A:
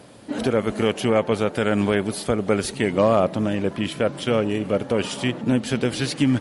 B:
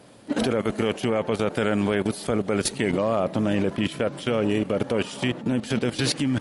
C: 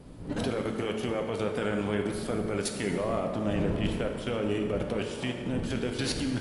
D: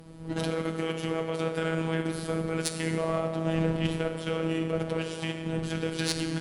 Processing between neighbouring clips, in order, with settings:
bell 66 Hz -3 dB 1.1 oct; level quantiser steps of 14 dB; gain +5.5 dB
wind noise 220 Hz -33 dBFS; plate-style reverb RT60 2 s, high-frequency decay 0.65×, DRR 3 dB; gain -8 dB
robotiser 162 Hz; added harmonics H 3 -21 dB, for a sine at -11 dBFS; gain +5.5 dB

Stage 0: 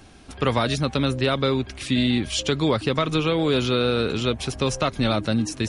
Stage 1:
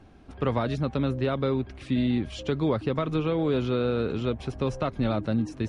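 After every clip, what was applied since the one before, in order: LPF 1000 Hz 6 dB/oct; gain -3 dB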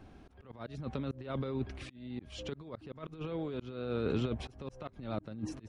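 negative-ratio compressor -28 dBFS, ratio -0.5; wow and flutter 25 cents; auto swell 0.318 s; gain -5 dB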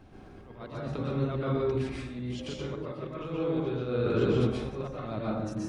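plate-style reverb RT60 0.99 s, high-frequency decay 0.5×, pre-delay 0.11 s, DRR -6 dB

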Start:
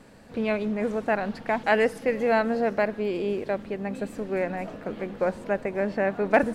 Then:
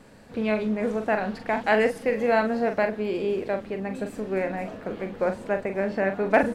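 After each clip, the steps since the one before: doubler 42 ms -7.5 dB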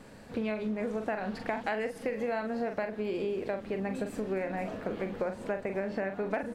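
compressor 10:1, threshold -29 dBFS, peak gain reduction 15.5 dB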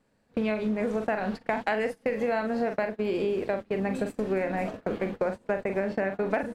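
gate -36 dBFS, range -24 dB; gain +5 dB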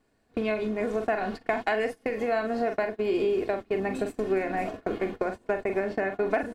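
comb 2.8 ms, depth 47%

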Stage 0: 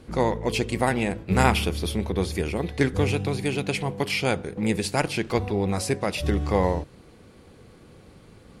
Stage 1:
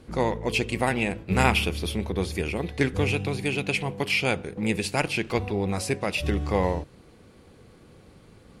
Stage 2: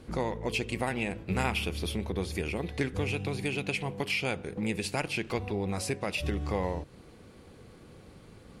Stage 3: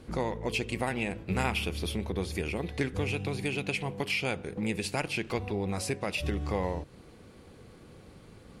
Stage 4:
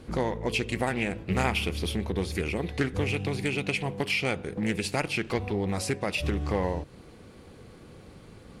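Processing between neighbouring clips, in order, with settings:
dynamic EQ 2600 Hz, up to +7 dB, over -45 dBFS, Q 2.7; gain -2 dB
compressor 2:1, threshold -32 dBFS, peak gain reduction 9.5 dB
nothing audible
Doppler distortion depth 0.23 ms; gain +3 dB

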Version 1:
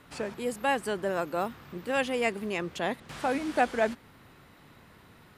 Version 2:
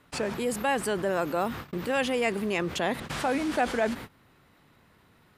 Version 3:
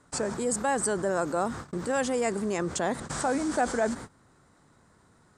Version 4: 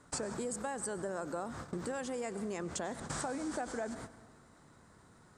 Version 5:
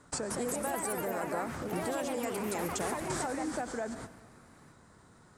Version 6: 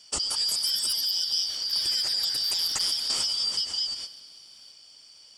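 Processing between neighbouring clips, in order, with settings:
gate -44 dBFS, range -42 dB; fast leveller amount 50%; gain -2 dB
EQ curve 1500 Hz 0 dB, 2700 Hz -12 dB, 8200 Hz +11 dB, 13000 Hz -18 dB
compressor 10:1, threshold -35 dBFS, peak gain reduction 14.5 dB; reverb RT60 1.4 s, pre-delay 86 ms, DRR 14.5 dB
echoes that change speed 0.198 s, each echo +3 st, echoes 3; gain +2 dB
four-band scrambler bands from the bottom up 4321; gain +7 dB

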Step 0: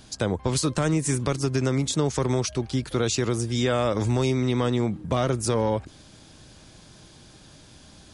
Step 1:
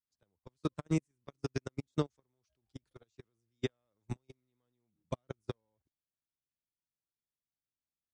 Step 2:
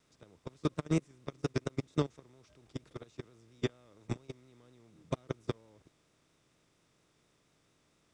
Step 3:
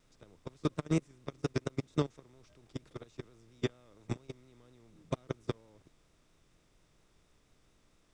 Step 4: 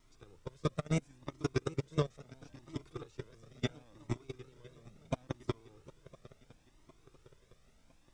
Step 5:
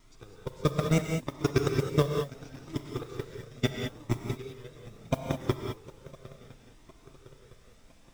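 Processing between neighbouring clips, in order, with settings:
dynamic EQ 9700 Hz, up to -5 dB, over -44 dBFS, Q 1.4; level quantiser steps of 22 dB; upward expander 2.5:1, over -45 dBFS; gain -4 dB
per-bin compression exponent 0.6; vibrato 4.3 Hz 52 cents
added noise brown -69 dBFS
swung echo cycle 1.009 s, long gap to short 3:1, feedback 48%, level -19.5 dB; cascading flanger rising 0.73 Hz; gain +4.5 dB
modulation noise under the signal 26 dB; non-linear reverb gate 0.23 s rising, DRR 3 dB; gain +7 dB

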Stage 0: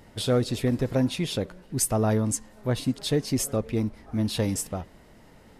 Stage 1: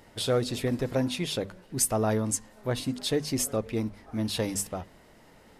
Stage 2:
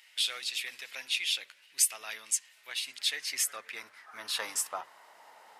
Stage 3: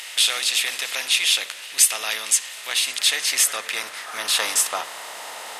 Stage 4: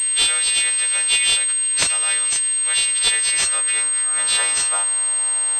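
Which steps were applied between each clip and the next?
low shelf 280 Hz -5.5 dB; notches 50/100/150/200/250 Hz
octaver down 1 oct, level -1 dB; high-pass sweep 2500 Hz -> 840 Hz, 2.76–5.27
per-bin compression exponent 0.6; gain +8.5 dB
frequency quantiser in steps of 2 st; pulse-width modulation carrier 8400 Hz; gain -2.5 dB

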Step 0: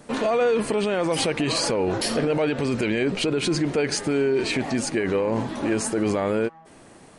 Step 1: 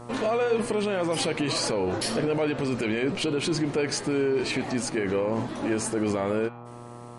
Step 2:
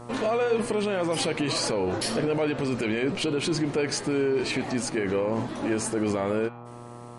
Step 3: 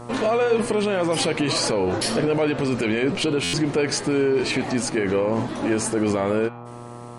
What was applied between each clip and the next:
de-hum 120.3 Hz, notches 37; buzz 120 Hz, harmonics 11, -40 dBFS -3 dB/oct; gain -3 dB
nothing audible
stuck buffer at 3.43, samples 512, times 8; gain +4.5 dB

